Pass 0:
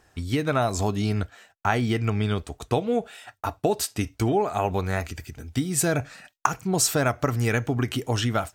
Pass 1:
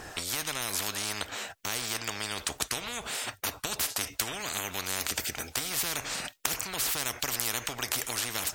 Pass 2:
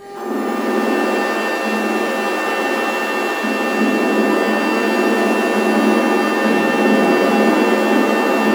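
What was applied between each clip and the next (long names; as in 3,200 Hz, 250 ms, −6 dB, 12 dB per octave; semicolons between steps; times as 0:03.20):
every bin compressed towards the loudest bin 10 to 1; level −2 dB
frequency axis turned over on the octave scale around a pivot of 1,800 Hz; hum with harmonics 400 Hz, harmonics 4, −40 dBFS −7 dB per octave; reverb with rising layers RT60 3.3 s, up +7 semitones, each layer −2 dB, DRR −7.5 dB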